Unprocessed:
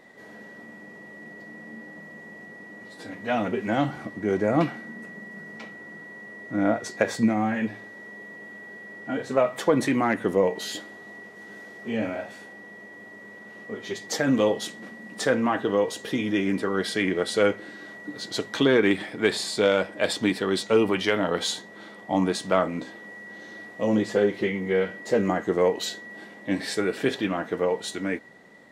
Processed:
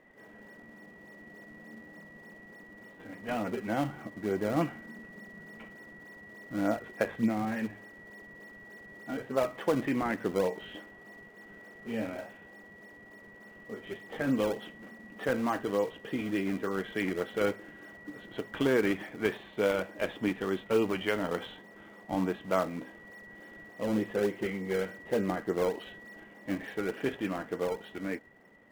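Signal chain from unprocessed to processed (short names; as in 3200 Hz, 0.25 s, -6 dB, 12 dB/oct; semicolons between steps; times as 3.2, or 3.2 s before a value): elliptic low-pass 3100 Hz; in parallel at -9.5 dB: decimation with a swept rate 28×, swing 160% 3.4 Hz; on the sum: gain -8 dB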